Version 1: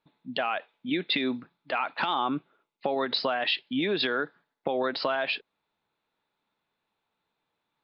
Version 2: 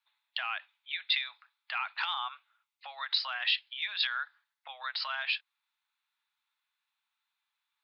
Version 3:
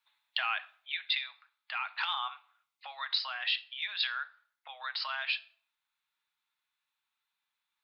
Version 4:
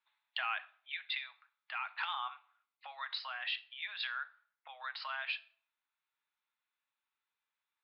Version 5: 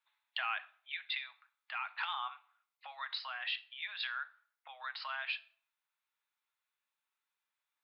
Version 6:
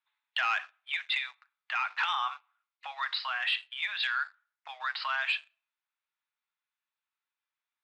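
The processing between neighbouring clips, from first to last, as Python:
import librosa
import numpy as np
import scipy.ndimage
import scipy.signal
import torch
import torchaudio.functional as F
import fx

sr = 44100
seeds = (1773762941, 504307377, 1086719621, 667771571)

y1 = scipy.signal.sosfilt(scipy.signal.bessel(8, 1600.0, 'highpass', norm='mag', fs=sr, output='sos'), x)
y2 = fx.rider(y1, sr, range_db=3, speed_s=0.5)
y2 = fx.room_shoebox(y2, sr, seeds[0], volume_m3=810.0, walls='furnished', distance_m=0.53)
y3 = fx.bass_treble(y2, sr, bass_db=-7, treble_db=-13)
y3 = F.gain(torch.from_numpy(y3), -3.0).numpy()
y4 = scipy.signal.sosfilt(scipy.signal.butter(2, 450.0, 'highpass', fs=sr, output='sos'), y3)
y5 = fx.leveller(y4, sr, passes=2)
y5 = fx.bandpass_edges(y5, sr, low_hz=730.0, high_hz=4300.0)
y5 = F.gain(torch.from_numpy(y5), 2.5).numpy()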